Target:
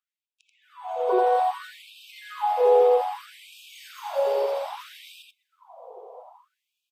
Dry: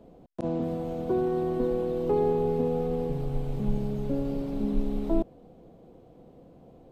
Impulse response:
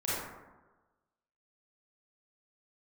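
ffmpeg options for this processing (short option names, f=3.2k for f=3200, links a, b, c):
-filter_complex "[0:a]highpass=180,highshelf=f=3.1k:g=5.5,asplit=2[a][b];[b]aecho=0:1:128|256|384|512|640:0.141|0.0791|0.0443|0.0248|0.0139[c];[a][c]amix=inputs=2:normalize=0,dynaudnorm=f=670:g=3:m=16dB,equalizer=f=950:w=3:g=9.5,bandreject=f=4.1k:w=17,afftdn=nr=18:nf=-50,asplit=2[d][e];[e]aecho=0:1:85:0.631[f];[d][f]amix=inputs=2:normalize=0,afftfilt=real='re*gte(b*sr/1024,380*pow(2400/380,0.5+0.5*sin(2*PI*0.62*pts/sr)))':imag='im*gte(b*sr/1024,380*pow(2400/380,0.5+0.5*sin(2*PI*0.62*pts/sr)))':win_size=1024:overlap=0.75,volume=-4dB"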